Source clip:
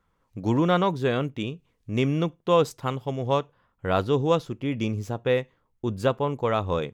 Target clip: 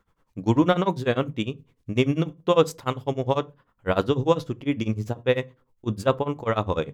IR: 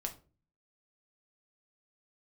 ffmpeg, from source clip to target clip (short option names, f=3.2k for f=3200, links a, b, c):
-filter_complex "[0:a]bandreject=f=50:t=h:w=6,bandreject=f=100:t=h:w=6,bandreject=f=150:t=h:w=6,tremolo=f=10:d=0.96,asplit=2[a][b];[1:a]atrim=start_sample=2205,asetrate=70560,aresample=44100[c];[b][c]afir=irnorm=-1:irlink=0,volume=-4.5dB[d];[a][d]amix=inputs=2:normalize=0,volume=3dB"